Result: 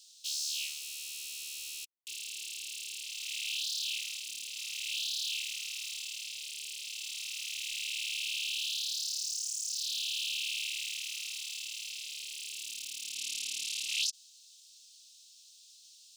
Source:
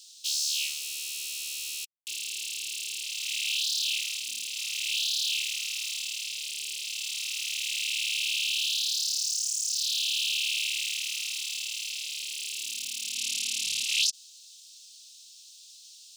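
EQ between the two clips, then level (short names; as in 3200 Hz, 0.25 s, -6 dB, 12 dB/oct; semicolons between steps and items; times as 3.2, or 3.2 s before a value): steep high-pass 230 Hz 72 dB/oct; -6.5 dB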